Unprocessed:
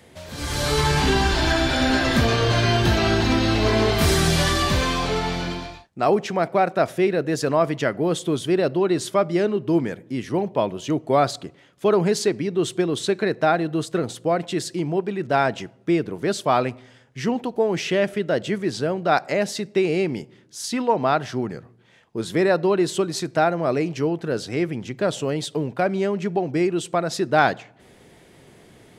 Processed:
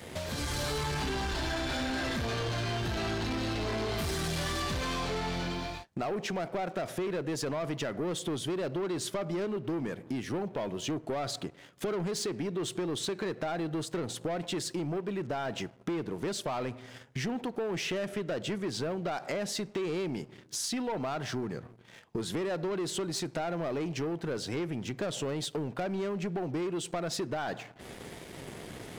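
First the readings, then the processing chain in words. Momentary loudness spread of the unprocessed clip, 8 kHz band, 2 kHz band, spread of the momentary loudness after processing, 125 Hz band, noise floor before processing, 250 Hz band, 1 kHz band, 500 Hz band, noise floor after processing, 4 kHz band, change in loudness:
8 LU, -7.0 dB, -12.0 dB, 5 LU, -11.0 dB, -52 dBFS, -11.0 dB, -13.5 dB, -12.5 dB, -53 dBFS, -9.5 dB, -12.0 dB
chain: limiter -13 dBFS, peak gain reduction 9.5 dB; sample leveller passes 2; compressor 4:1, threshold -36 dBFS, peak gain reduction 16.5 dB; gain +1 dB

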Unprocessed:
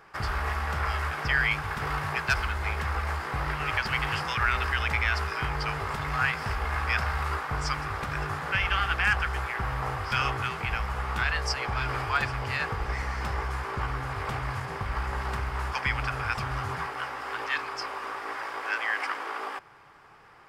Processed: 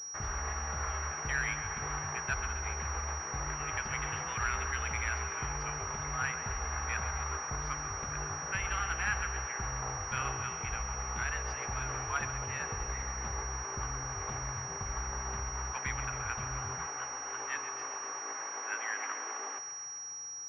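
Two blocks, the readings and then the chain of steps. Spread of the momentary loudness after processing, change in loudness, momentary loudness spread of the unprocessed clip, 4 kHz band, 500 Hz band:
4 LU, -6.5 dB, 7 LU, -4.5 dB, -7.0 dB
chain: thinning echo 0.133 s, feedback 72%, level -11 dB; pulse-width modulation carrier 5700 Hz; gain -7.5 dB

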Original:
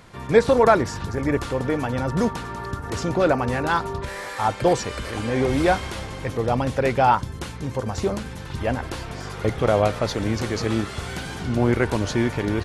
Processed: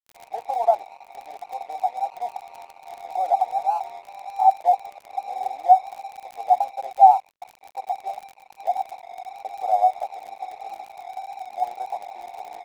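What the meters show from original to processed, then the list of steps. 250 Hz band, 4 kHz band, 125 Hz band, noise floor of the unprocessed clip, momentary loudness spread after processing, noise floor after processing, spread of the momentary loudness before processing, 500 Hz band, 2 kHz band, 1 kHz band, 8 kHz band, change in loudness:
under -35 dB, under -15 dB, under -40 dB, -35 dBFS, 20 LU, -54 dBFS, 12 LU, -8.0 dB, under -15 dB, +5.5 dB, under -15 dB, +0.5 dB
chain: in parallel at -1.5 dB: limiter -14.5 dBFS, peak gain reduction 11 dB; on the sum: Butterworth band-pass 760 Hz, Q 7.7; crackle 38/s -39 dBFS; crossover distortion -51.5 dBFS; gain +8 dB

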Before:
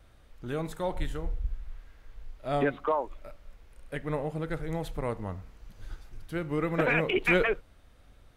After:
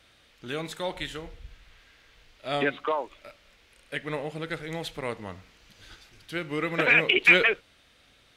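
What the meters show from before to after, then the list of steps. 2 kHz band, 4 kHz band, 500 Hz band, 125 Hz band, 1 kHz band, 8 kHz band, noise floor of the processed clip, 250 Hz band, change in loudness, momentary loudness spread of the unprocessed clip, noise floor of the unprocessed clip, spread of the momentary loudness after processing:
+8.0 dB, +11.5 dB, -0.5 dB, -4.5 dB, +0.5 dB, +5.5 dB, -61 dBFS, -1.5 dB, +5.0 dB, 20 LU, -57 dBFS, 19 LU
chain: weighting filter D

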